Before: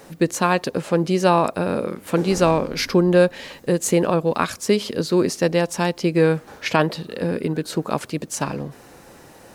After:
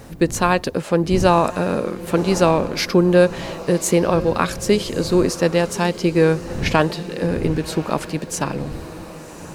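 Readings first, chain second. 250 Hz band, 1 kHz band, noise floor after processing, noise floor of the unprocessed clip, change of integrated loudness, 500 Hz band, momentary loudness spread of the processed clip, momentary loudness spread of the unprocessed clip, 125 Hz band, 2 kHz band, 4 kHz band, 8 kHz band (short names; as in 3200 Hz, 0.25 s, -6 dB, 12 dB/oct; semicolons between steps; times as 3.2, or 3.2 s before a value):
+2.0 dB, +1.5 dB, -36 dBFS, -46 dBFS, +1.5 dB, +1.5 dB, 9 LU, 9 LU, +2.5 dB, +1.5 dB, +1.5 dB, +1.5 dB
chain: wind noise 170 Hz -35 dBFS; diffused feedback echo 1.104 s, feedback 47%, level -15 dB; gain +1.5 dB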